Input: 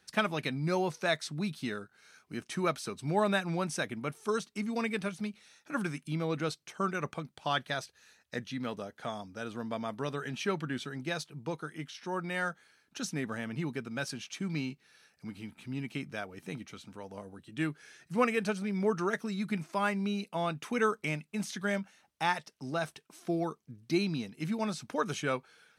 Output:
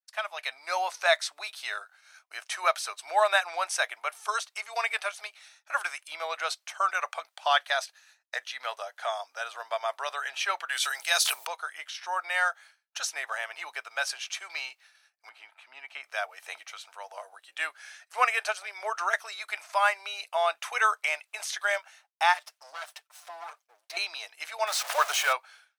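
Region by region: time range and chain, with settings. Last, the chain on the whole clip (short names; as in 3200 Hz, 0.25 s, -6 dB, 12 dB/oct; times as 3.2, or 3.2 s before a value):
10.69–11.47 RIAA curve recording + notches 50/100/150/200/250/300 Hz + sustainer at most 42 dB/s
15.29–16.04 LPF 1600 Hz 6 dB/oct + bell 480 Hz -3.5 dB 0.96 oct
22.34–23.97 minimum comb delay 6.7 ms + compressor 2.5:1, threshold -44 dBFS
24.67–25.33 zero-crossing step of -33.5 dBFS + low shelf 140 Hz -6.5 dB
whole clip: expander -53 dBFS; elliptic high-pass 650 Hz, stop band 70 dB; AGC gain up to 12 dB; gain -3.5 dB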